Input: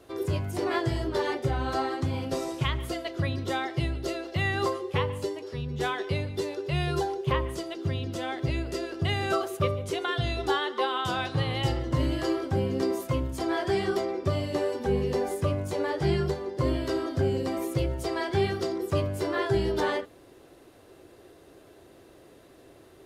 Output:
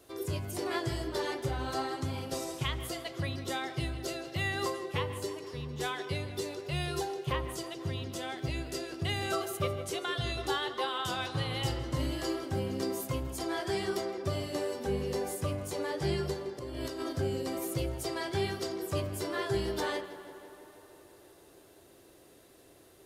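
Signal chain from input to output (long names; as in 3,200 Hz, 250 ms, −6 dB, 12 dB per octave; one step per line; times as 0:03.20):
high-shelf EQ 4,600 Hz +12 dB
0:16.59–0:17.13: compressor whose output falls as the input rises −32 dBFS, ratio −1
tape delay 161 ms, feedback 80%, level −13 dB, low-pass 3,900 Hz
level −6.5 dB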